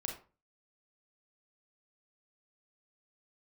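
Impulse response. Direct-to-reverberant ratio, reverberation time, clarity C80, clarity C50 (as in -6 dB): 1.0 dB, 0.35 s, 12.0 dB, 6.5 dB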